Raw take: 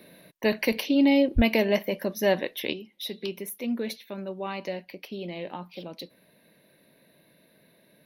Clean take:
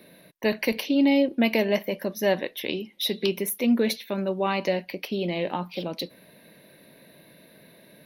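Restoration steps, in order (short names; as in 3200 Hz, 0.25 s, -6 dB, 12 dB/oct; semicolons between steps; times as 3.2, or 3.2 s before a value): 1.35–1.47 HPF 140 Hz 24 dB/oct; 2.73 gain correction +8 dB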